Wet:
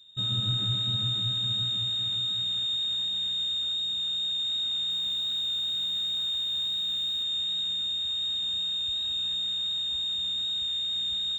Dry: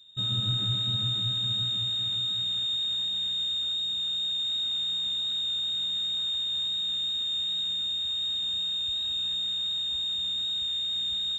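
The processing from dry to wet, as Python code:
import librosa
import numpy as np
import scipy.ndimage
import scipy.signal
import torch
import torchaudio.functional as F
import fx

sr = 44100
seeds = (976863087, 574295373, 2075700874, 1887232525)

y = fx.delta_hold(x, sr, step_db=-48.0, at=(4.9, 7.23))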